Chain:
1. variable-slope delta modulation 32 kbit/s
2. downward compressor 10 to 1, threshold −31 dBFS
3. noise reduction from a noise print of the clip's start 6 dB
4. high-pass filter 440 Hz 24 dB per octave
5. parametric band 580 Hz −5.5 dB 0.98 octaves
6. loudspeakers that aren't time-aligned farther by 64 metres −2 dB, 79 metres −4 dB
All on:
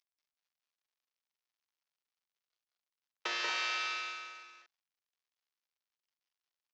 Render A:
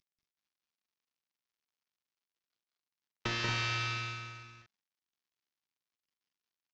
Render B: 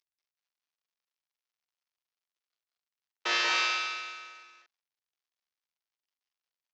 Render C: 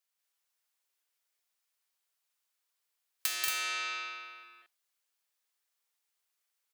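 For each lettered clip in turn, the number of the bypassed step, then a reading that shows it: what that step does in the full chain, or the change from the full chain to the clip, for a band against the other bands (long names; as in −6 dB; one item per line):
4, 250 Hz band +11.5 dB
2, average gain reduction 2.5 dB
1, 8 kHz band +11.5 dB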